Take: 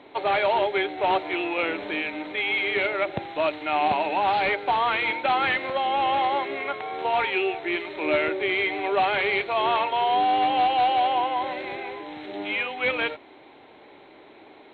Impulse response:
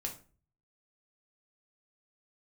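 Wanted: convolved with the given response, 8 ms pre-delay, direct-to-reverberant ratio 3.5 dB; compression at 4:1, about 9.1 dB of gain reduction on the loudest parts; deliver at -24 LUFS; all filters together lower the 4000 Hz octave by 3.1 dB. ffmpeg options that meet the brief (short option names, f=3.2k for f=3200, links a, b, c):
-filter_complex "[0:a]equalizer=f=4k:t=o:g=-4.5,acompressor=threshold=-30dB:ratio=4,asplit=2[a][b];[1:a]atrim=start_sample=2205,adelay=8[c];[b][c]afir=irnorm=-1:irlink=0,volume=-3.5dB[d];[a][d]amix=inputs=2:normalize=0,volume=6dB"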